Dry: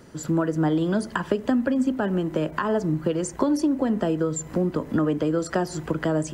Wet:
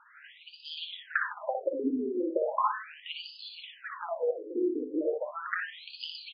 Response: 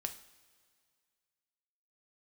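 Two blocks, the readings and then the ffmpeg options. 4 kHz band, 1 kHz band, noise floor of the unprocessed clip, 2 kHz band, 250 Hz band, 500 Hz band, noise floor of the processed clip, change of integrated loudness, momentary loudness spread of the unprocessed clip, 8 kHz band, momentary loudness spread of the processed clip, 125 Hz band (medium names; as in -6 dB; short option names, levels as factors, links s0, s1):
+2.0 dB, -3.5 dB, -41 dBFS, -1.5 dB, -13.5 dB, -7.0 dB, -56 dBFS, -8.5 dB, 4 LU, under -40 dB, 12 LU, under -40 dB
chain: -filter_complex "[0:a]aemphasis=mode=production:type=riaa,aecho=1:1:478:0.376,asplit=2[s0][s1];[1:a]atrim=start_sample=2205,adelay=58[s2];[s1][s2]afir=irnorm=-1:irlink=0,volume=0.708[s3];[s0][s3]amix=inputs=2:normalize=0,afftfilt=real='re*between(b*sr/1024,330*pow(3600/330,0.5+0.5*sin(2*PI*0.37*pts/sr))/1.41,330*pow(3600/330,0.5+0.5*sin(2*PI*0.37*pts/sr))*1.41)':imag='im*between(b*sr/1024,330*pow(3600/330,0.5+0.5*sin(2*PI*0.37*pts/sr))/1.41,330*pow(3600/330,0.5+0.5*sin(2*PI*0.37*pts/sr))*1.41)':win_size=1024:overlap=0.75"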